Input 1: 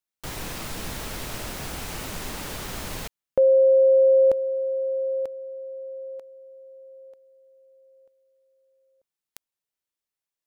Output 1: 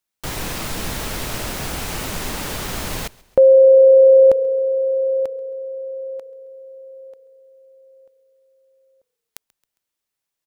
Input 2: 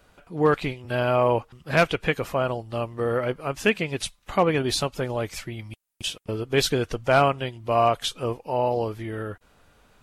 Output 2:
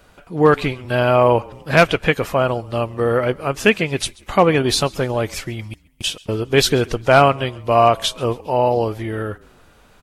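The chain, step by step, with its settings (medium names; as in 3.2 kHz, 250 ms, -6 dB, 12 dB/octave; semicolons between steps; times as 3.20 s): frequency-shifting echo 135 ms, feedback 48%, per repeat -31 Hz, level -24 dB; trim +7 dB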